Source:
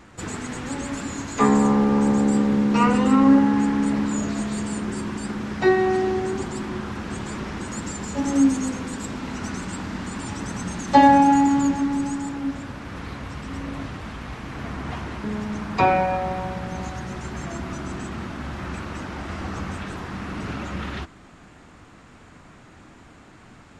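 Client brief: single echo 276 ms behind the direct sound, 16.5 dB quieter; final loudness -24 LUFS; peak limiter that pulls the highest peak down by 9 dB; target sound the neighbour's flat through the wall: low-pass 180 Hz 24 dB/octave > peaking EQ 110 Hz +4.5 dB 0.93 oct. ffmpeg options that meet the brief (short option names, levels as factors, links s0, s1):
-af "alimiter=limit=0.251:level=0:latency=1,lowpass=f=180:w=0.5412,lowpass=f=180:w=1.3066,equalizer=f=110:t=o:w=0.93:g=4.5,aecho=1:1:276:0.15,volume=2.66"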